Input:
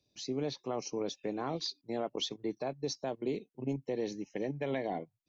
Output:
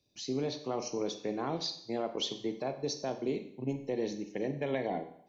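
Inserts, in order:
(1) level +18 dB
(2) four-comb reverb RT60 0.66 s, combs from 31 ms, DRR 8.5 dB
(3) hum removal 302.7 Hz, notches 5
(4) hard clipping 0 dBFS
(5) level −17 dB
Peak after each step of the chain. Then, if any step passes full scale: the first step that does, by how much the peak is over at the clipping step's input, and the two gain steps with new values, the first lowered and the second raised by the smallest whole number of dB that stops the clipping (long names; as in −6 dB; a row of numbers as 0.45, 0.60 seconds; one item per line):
−4.5, −2.0, −2.0, −2.0, −19.0 dBFS
no step passes full scale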